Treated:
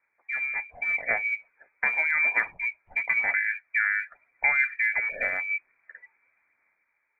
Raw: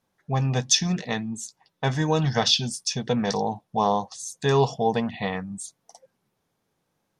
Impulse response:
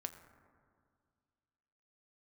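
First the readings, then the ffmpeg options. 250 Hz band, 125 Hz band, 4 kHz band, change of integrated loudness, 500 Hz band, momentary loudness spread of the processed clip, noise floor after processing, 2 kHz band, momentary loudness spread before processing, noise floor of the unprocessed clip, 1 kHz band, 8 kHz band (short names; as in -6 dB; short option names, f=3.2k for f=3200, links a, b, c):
under -25 dB, under -35 dB, under -35 dB, -1.0 dB, -16.5 dB, 8 LU, -75 dBFS, +13.0 dB, 13 LU, -76 dBFS, -11.0 dB, under -40 dB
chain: -af "acompressor=threshold=-33dB:ratio=2.5,lowpass=f=2.1k:t=q:w=0.5098,lowpass=f=2.1k:t=q:w=0.6013,lowpass=f=2.1k:t=q:w=0.9,lowpass=f=2.1k:t=q:w=2.563,afreqshift=-2500,aphaser=in_gain=1:out_gain=1:delay=2.4:decay=0.28:speed=0.9:type=sinusoidal,dynaudnorm=f=110:g=13:m=6.5dB"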